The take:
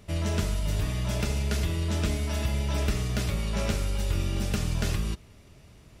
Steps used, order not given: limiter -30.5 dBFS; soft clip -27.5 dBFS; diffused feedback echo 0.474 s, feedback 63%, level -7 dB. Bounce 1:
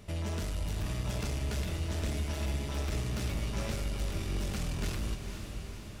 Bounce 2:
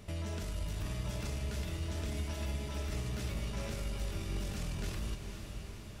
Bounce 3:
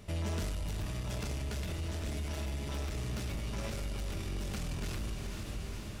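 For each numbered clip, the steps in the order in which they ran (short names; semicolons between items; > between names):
soft clip > limiter > diffused feedback echo; limiter > soft clip > diffused feedback echo; soft clip > diffused feedback echo > limiter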